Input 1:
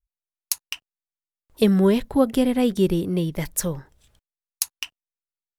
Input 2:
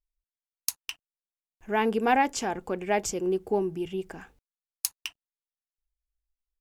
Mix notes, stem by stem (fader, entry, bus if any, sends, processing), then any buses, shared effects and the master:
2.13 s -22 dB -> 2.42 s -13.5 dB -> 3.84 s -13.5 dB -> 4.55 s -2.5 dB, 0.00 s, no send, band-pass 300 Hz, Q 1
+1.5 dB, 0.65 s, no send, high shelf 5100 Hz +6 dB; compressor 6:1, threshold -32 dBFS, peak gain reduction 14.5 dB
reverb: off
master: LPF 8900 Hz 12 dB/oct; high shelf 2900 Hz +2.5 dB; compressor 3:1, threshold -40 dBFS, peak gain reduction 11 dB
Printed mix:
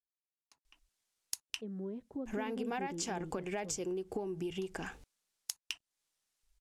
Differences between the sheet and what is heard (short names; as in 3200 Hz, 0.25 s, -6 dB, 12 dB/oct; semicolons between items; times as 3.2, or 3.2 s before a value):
stem 1 -22.0 dB -> -15.0 dB; stem 2 +1.5 dB -> +10.5 dB